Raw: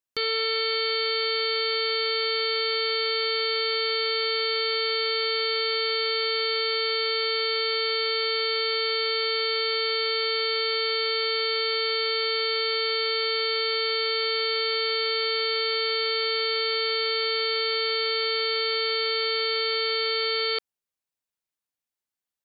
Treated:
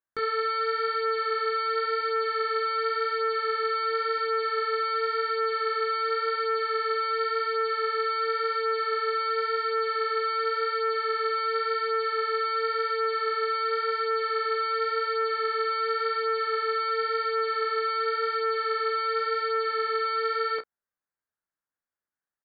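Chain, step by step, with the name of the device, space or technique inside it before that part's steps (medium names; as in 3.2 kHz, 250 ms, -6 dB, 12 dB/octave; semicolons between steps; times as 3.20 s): double-tracked vocal (doubling 32 ms -14 dB; chorus 0.92 Hz, delay 18 ms, depth 5.3 ms); resonant high shelf 2.2 kHz -10.5 dB, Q 3; trim +2 dB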